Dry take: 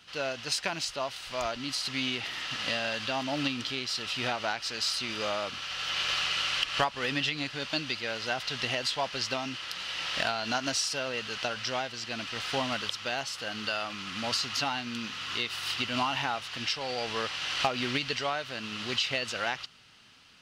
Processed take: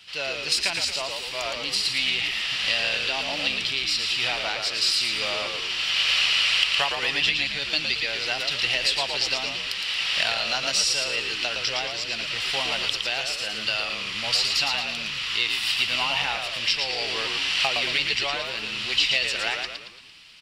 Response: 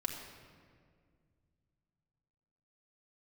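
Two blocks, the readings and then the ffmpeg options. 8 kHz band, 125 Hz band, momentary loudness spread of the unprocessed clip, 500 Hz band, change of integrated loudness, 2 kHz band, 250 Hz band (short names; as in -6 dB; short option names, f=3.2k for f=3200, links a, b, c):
+6.5 dB, -2.0 dB, 6 LU, +1.0 dB, +7.5 dB, +8.0 dB, -5.0 dB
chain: -filter_complex "[0:a]acrossover=split=440[a][b];[a]asoftclip=type=tanh:threshold=-38dB[c];[c][b]amix=inputs=2:normalize=0,equalizer=f=250:w=3.7:g=-6.5,asplit=7[d][e][f][g][h][i][j];[e]adelay=113,afreqshift=-86,volume=-5dB[k];[f]adelay=226,afreqshift=-172,volume=-11.7dB[l];[g]adelay=339,afreqshift=-258,volume=-18.5dB[m];[h]adelay=452,afreqshift=-344,volume=-25.2dB[n];[i]adelay=565,afreqshift=-430,volume=-32dB[o];[j]adelay=678,afreqshift=-516,volume=-38.7dB[p];[d][k][l][m][n][o][p]amix=inputs=7:normalize=0,aexciter=amount=3.7:drive=4.4:freq=2k,highshelf=f=6.1k:g=-11.5,bandreject=f=6.3k:w=6.9"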